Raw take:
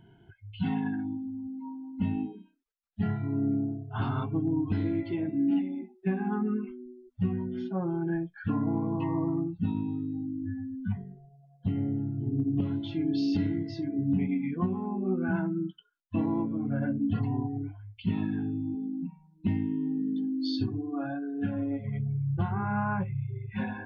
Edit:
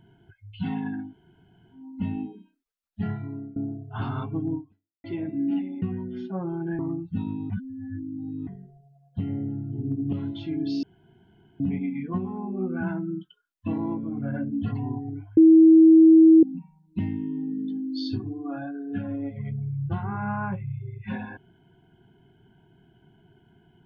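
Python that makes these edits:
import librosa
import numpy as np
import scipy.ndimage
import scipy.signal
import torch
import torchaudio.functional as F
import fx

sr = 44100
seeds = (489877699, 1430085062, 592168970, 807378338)

y = fx.edit(x, sr, fx.room_tone_fill(start_s=1.07, length_s=0.72, crossfade_s=0.16),
    fx.fade_out_to(start_s=3.12, length_s=0.44, floor_db=-24.0),
    fx.fade_out_span(start_s=4.55, length_s=0.49, curve='exp'),
    fx.cut(start_s=5.82, length_s=1.41),
    fx.cut(start_s=8.2, length_s=1.07),
    fx.reverse_span(start_s=9.98, length_s=0.97),
    fx.room_tone_fill(start_s=13.31, length_s=0.77),
    fx.bleep(start_s=17.85, length_s=1.06, hz=322.0, db=-9.5), tone=tone)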